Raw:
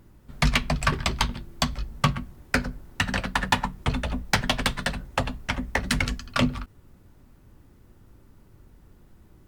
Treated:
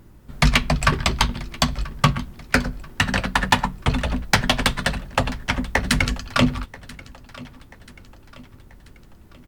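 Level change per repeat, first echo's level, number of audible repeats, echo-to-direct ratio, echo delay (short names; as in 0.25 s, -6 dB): -6.5 dB, -20.5 dB, 3, -19.5 dB, 0.985 s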